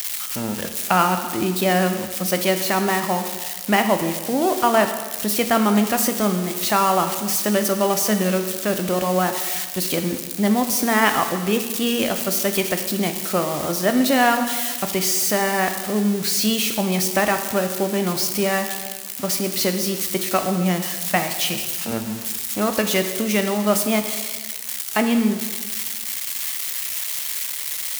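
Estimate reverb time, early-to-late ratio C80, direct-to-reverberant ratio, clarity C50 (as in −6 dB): 1.4 s, 9.5 dB, 6.5 dB, 8.0 dB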